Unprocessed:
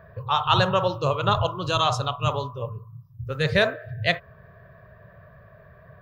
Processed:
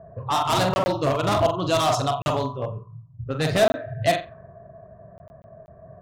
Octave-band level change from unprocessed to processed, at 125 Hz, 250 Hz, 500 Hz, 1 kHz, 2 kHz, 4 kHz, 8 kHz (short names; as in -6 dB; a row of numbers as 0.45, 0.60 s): -0.5, +4.0, +3.5, +1.0, -3.5, -2.0, +8.0 dB